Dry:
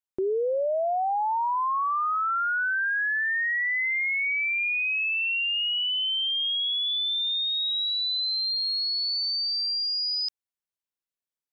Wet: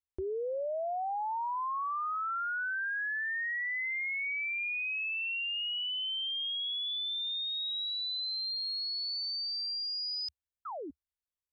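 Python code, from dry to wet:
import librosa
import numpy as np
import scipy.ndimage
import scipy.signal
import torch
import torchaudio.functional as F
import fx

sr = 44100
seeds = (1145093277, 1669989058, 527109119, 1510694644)

y = fx.spec_paint(x, sr, seeds[0], shape='fall', start_s=10.65, length_s=0.26, low_hz=250.0, high_hz=1400.0, level_db=-31.0)
y = fx.low_shelf_res(y, sr, hz=110.0, db=13.5, q=3.0)
y = F.gain(torch.from_numpy(y), -8.0).numpy()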